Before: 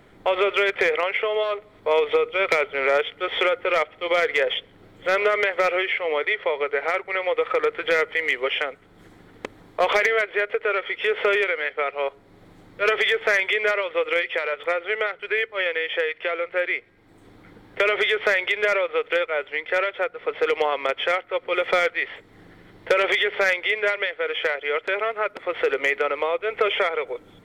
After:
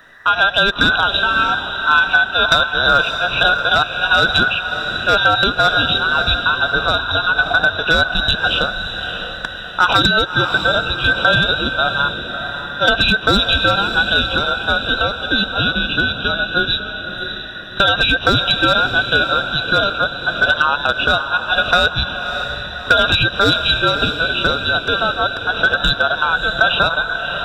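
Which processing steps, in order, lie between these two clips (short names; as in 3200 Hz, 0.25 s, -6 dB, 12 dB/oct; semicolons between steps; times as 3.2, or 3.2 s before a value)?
band inversion scrambler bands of 2000 Hz; diffused feedback echo 0.612 s, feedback 50%, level -8 dB; gain +6.5 dB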